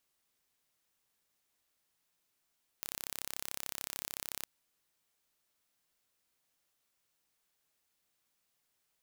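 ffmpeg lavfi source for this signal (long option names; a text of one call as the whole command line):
ffmpeg -f lavfi -i "aevalsrc='0.266*eq(mod(n,1312),0)':duration=1.63:sample_rate=44100" out.wav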